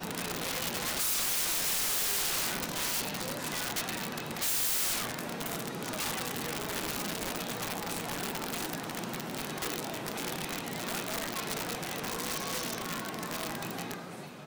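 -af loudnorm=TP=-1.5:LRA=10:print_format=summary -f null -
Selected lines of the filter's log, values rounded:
Input Integrated:    -32.7 LUFS
Input True Peak:     -19.0 dBTP
Input LRA:             6.4 LU
Input Threshold:     -42.8 LUFS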